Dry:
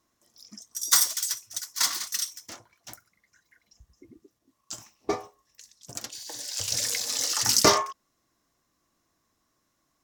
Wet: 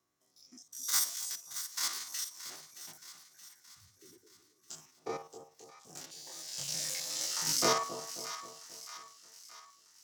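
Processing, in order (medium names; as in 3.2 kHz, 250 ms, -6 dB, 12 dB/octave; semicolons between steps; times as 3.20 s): spectrogram pixelated in time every 50 ms; two-band feedback delay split 920 Hz, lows 267 ms, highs 623 ms, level -12 dB; frequency shift +43 Hz; trim -6.5 dB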